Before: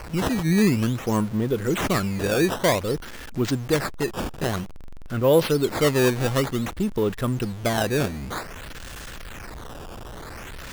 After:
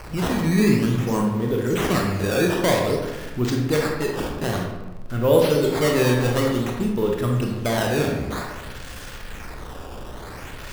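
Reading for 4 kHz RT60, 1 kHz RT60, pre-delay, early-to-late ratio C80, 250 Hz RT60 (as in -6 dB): 0.65 s, 1.1 s, 20 ms, 5.0 dB, 1.4 s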